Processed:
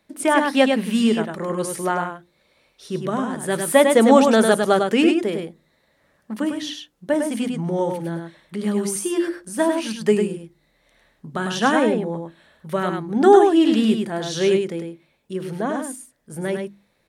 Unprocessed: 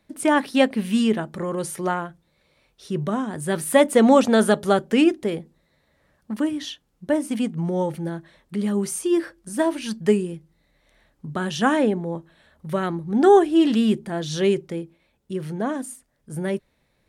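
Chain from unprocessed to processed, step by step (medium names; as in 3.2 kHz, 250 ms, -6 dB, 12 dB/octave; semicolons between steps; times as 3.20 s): bass shelf 120 Hz -9 dB; hum notches 50/100/150/200/250/300/350 Hz; on a send: delay 102 ms -5 dB; on the sum: trim +2 dB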